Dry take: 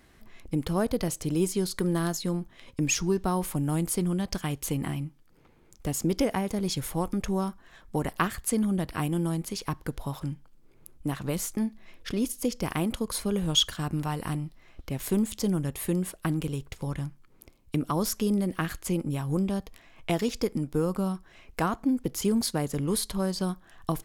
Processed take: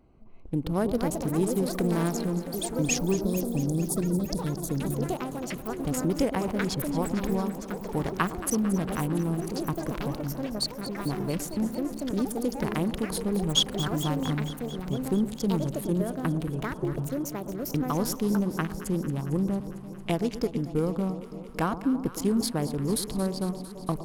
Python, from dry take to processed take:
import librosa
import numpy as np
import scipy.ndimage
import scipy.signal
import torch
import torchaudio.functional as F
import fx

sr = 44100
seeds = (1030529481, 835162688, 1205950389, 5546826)

p1 = fx.wiener(x, sr, points=25)
p2 = fx.spec_box(p1, sr, start_s=3.16, length_s=2.14, low_hz=620.0, high_hz=3300.0, gain_db=-26)
p3 = fx.echo_pitch(p2, sr, ms=452, semitones=5, count=3, db_per_echo=-6.0)
y = p3 + fx.echo_alternate(p3, sr, ms=113, hz=1000.0, feedback_pct=86, wet_db=-12, dry=0)